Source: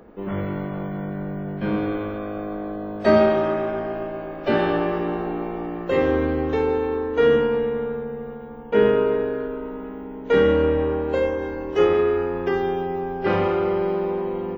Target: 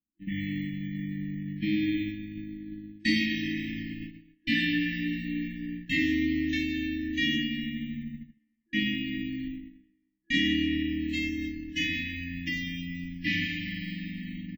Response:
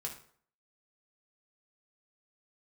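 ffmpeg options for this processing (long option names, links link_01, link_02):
-filter_complex "[0:a]asplit=2[link_01][link_02];[link_02]adelay=47,volume=-13dB[link_03];[link_01][link_03]amix=inputs=2:normalize=0,agate=range=-48dB:threshold=-28dB:ratio=16:detection=peak,acrossover=split=290[link_04][link_05];[link_04]acompressor=threshold=-39dB:ratio=6[link_06];[link_05]asplit=2[link_07][link_08];[link_08]adelay=199,lowpass=frequency=2500:poles=1,volume=-23.5dB,asplit=2[link_09][link_10];[link_10]adelay=199,lowpass=frequency=2500:poles=1,volume=0.51,asplit=2[link_11][link_12];[link_12]adelay=199,lowpass=frequency=2500:poles=1,volume=0.51[link_13];[link_07][link_09][link_11][link_13]amix=inputs=4:normalize=0[link_14];[link_06][link_14]amix=inputs=2:normalize=0,afftfilt=real='re*(1-between(b*sr/4096,330,1700))':imag='im*(1-between(b*sr/4096,330,1700))':win_size=4096:overlap=0.75,adynamicequalizer=threshold=0.00447:dfrequency=2600:dqfactor=0.7:tfrequency=2600:tqfactor=0.7:attack=5:release=100:ratio=0.375:range=2.5:mode=boostabove:tftype=highshelf,volume=3dB"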